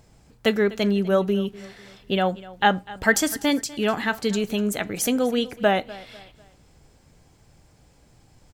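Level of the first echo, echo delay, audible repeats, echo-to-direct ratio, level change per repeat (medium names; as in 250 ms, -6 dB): -19.5 dB, 248 ms, 2, -19.0 dB, -8.5 dB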